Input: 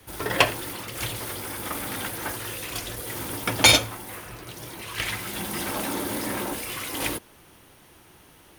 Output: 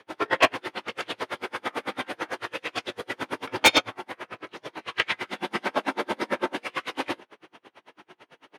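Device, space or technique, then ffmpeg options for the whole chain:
helicopter radio: -filter_complex "[0:a]highpass=330,lowpass=2.9k,asplit=2[a][b];[b]adelay=19,volume=-2.5dB[c];[a][c]amix=inputs=2:normalize=0,aeval=exprs='val(0)*pow(10,-35*(0.5-0.5*cos(2*PI*9*n/s))/20)':c=same,asoftclip=type=hard:threshold=-19dB,volume=8.5dB"

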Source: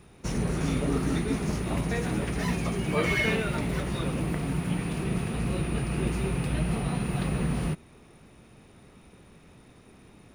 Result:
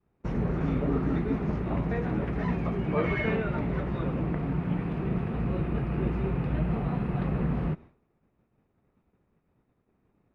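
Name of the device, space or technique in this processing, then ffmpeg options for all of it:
hearing-loss simulation: -af "lowpass=1.6k,agate=range=-33dB:threshold=-41dB:ratio=3:detection=peak"

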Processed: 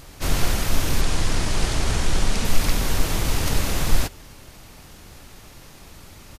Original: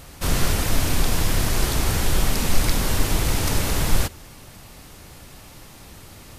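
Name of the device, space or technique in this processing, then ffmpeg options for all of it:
octave pedal: -filter_complex "[0:a]asplit=2[a][b];[b]asetrate=22050,aresample=44100,atempo=2,volume=-2dB[c];[a][c]amix=inputs=2:normalize=0,asettb=1/sr,asplit=3[d][e][f];[d]atrim=end=1.014[g];[e]atrim=start=1.01:end=2.45,asetpts=PTS-STARTPTS,afade=t=in:d=0.004:c=qsin,afade=t=out:st=1.436:d=0.004:c=qsin,lowpass=f=10k:w=0.5412,lowpass=f=10k:w=1.3066[h];[f]atrim=start=2.446[i];[g][h]acrossfade=d=0.004:c1=hsin:c2=qsin[j];[j][i]acrossfade=d=0.004:c1=qsin:c2=hsin,volume=-3dB"

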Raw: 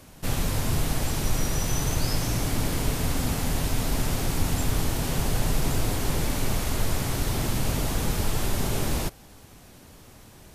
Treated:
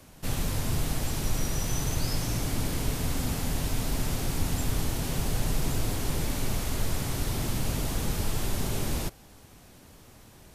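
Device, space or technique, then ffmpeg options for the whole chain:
one-band saturation: -filter_complex "[0:a]acrossover=split=390|2500[a][b][c];[b]asoftclip=type=tanh:threshold=-32.5dB[d];[a][d][c]amix=inputs=3:normalize=0,volume=-3dB"

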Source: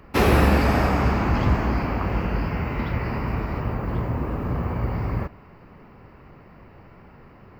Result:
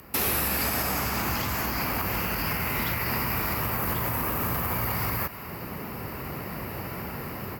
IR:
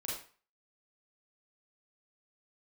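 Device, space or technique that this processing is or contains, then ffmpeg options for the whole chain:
FM broadcast chain: -filter_complex "[0:a]highpass=67,dynaudnorm=f=580:g=3:m=13.5dB,acrossover=split=860|6300[a][b][c];[a]acompressor=threshold=-29dB:ratio=4[d];[b]acompressor=threshold=-30dB:ratio=4[e];[c]acompressor=threshold=-52dB:ratio=4[f];[d][e][f]amix=inputs=3:normalize=0,aemphasis=mode=production:type=50fm,alimiter=limit=-19dB:level=0:latency=1:release=90,asoftclip=type=hard:threshold=-23dB,lowpass=f=15k:w=0.5412,lowpass=f=15k:w=1.3066,aemphasis=mode=production:type=50fm"

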